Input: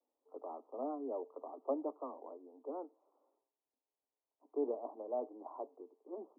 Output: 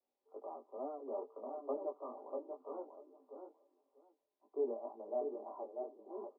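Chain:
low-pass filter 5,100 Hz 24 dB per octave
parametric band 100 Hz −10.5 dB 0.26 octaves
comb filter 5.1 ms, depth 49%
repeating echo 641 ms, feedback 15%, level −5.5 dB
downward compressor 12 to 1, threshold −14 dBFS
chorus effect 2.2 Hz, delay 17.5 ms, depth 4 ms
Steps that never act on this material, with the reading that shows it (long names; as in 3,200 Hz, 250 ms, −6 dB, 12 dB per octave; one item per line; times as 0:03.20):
low-pass filter 5,100 Hz: nothing at its input above 1,300 Hz
parametric band 100 Hz: nothing at its input below 210 Hz
downward compressor, threshold −14 dBFS: peak of its input −23.0 dBFS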